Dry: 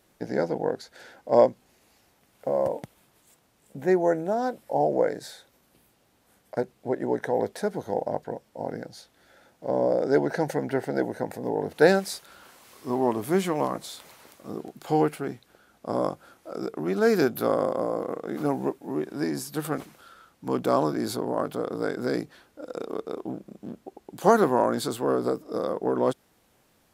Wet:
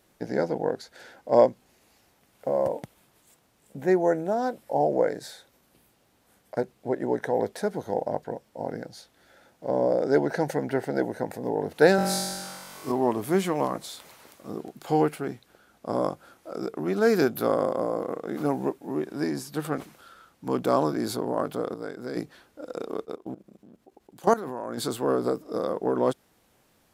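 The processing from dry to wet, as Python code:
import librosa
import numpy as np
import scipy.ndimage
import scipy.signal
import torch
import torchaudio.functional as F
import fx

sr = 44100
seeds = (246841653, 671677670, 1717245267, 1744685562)

y = fx.room_flutter(x, sr, wall_m=3.7, rt60_s=1.4, at=(11.96, 12.92))
y = fx.high_shelf(y, sr, hz=7300.0, db=-7.0, at=(19.33, 19.81))
y = fx.level_steps(y, sr, step_db=17, at=(23.04, 24.77), fade=0.02)
y = fx.edit(y, sr, fx.clip_gain(start_s=21.74, length_s=0.42, db=-7.5), tone=tone)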